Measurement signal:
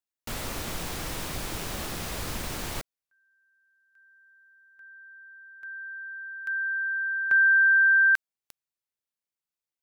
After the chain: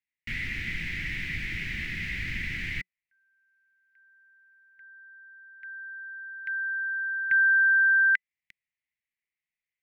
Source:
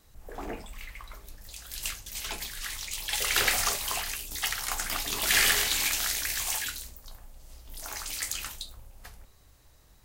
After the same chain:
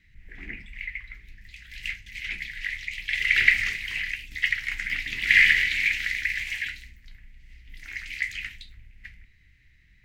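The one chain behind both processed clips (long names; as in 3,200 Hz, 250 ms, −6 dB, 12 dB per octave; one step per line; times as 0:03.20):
drawn EQ curve 180 Hz 0 dB, 360 Hz −10 dB, 510 Hz −24 dB, 830 Hz −25 dB, 1,200 Hz −20 dB, 2,000 Hz +15 dB, 3,500 Hz −4 dB, 9,800 Hz −23 dB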